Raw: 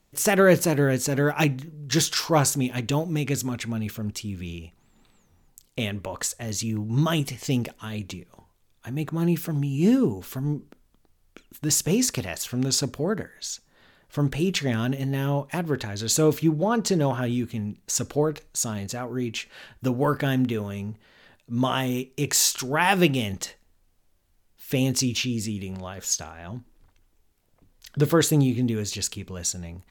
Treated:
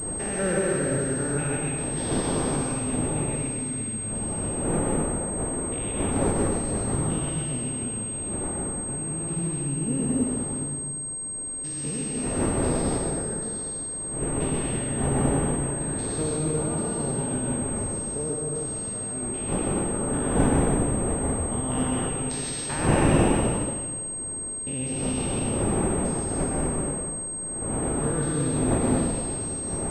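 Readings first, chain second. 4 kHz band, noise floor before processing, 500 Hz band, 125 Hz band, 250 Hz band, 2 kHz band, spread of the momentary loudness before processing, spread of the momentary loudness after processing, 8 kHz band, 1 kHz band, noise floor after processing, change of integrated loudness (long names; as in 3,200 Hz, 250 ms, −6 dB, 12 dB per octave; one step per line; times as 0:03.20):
−11.0 dB, −65 dBFS, −1.0 dB, −1.5 dB, −1.0 dB, −5.5 dB, 14 LU, 6 LU, +3.0 dB, −1.0 dB, −33 dBFS, −1.0 dB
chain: spectrum averaged block by block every 200 ms
wind on the microphone 420 Hz −26 dBFS
dense smooth reverb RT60 1.8 s, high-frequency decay 0.95×, pre-delay 110 ms, DRR −3 dB
switching amplifier with a slow clock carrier 8,400 Hz
level −7.5 dB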